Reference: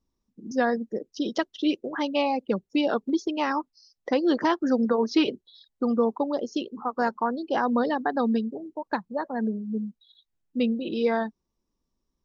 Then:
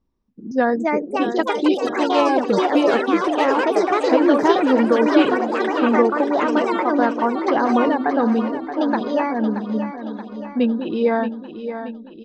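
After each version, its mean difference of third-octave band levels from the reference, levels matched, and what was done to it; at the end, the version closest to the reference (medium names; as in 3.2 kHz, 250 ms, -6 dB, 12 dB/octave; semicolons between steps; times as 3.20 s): 9.0 dB: low-pass 4.7 kHz 12 dB/octave; treble shelf 3.2 kHz -9.5 dB; ever faster or slower copies 393 ms, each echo +4 st, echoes 3; on a send: feedback delay 627 ms, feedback 55%, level -10 dB; on the sum: trim +6 dB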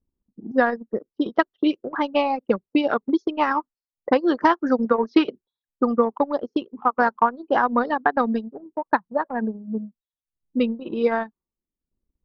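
3.5 dB: level-controlled noise filter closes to 410 Hz, open at -19.5 dBFS; low-pass 2.9 kHz 6 dB/octave; peaking EQ 1.3 kHz +7.5 dB 1.3 oct; transient shaper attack +6 dB, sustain -11 dB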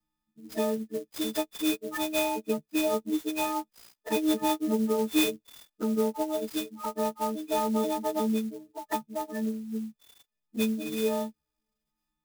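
12.0 dB: partials quantised in pitch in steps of 6 st; low-pass 4.8 kHz 12 dB/octave; touch-sensitive flanger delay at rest 5.8 ms, full sweep at -23.5 dBFS; sampling jitter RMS 0.043 ms; trim -3 dB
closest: second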